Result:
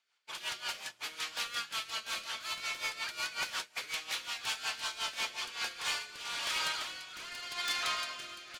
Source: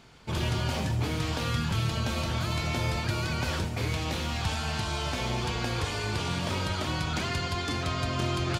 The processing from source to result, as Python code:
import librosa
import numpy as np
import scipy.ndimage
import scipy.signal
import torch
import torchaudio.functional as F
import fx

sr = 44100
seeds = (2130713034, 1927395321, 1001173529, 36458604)

p1 = scipy.signal.sosfilt(scipy.signal.butter(2, 1300.0, 'highpass', fs=sr, output='sos'), x)
p2 = fx.fold_sine(p1, sr, drive_db=11, ceiling_db=-18.5)
p3 = fx.rotary_switch(p2, sr, hz=5.5, then_hz=0.8, switch_at_s=5.35)
p4 = p3 + fx.echo_single(p3, sr, ms=616, db=-17.0, dry=0)
p5 = fx.upward_expand(p4, sr, threshold_db=-39.0, expansion=2.5)
y = F.gain(torch.from_numpy(p5), -8.0).numpy()